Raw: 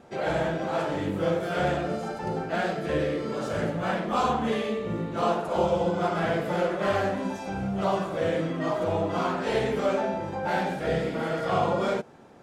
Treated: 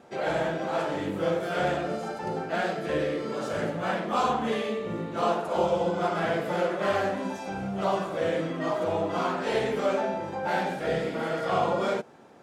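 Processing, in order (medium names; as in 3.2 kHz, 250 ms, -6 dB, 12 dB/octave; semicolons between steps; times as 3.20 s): bass shelf 110 Hz -12 dB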